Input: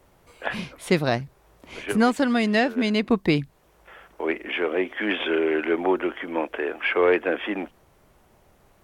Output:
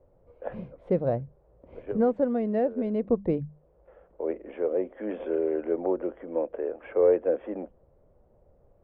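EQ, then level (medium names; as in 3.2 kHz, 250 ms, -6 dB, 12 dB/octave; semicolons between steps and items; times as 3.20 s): resonant low-pass 520 Hz, resonance Q 4.9; peaking EQ 410 Hz -13 dB 2.6 oct; hum notches 50/100/150/200 Hz; +1.5 dB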